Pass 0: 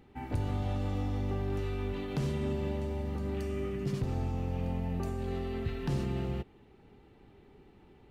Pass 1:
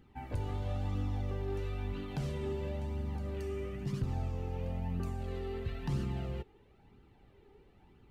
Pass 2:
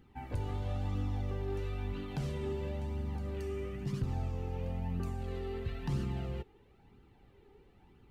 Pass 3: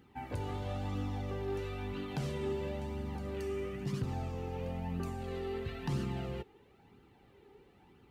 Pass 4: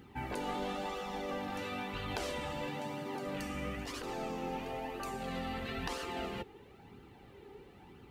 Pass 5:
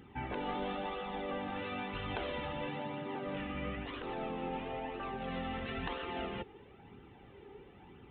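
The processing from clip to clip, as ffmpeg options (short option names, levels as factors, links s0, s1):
-af "flanger=delay=0.6:depth=1.9:regen=32:speed=1:shape=triangular"
-af "bandreject=f=620:w=16"
-af "highpass=f=160:p=1,volume=1.41"
-af "afftfilt=real='re*lt(hypot(re,im),0.0501)':imag='im*lt(hypot(re,im),0.0501)':win_size=1024:overlap=0.75,volume=2.11"
-af "aresample=8000,aresample=44100"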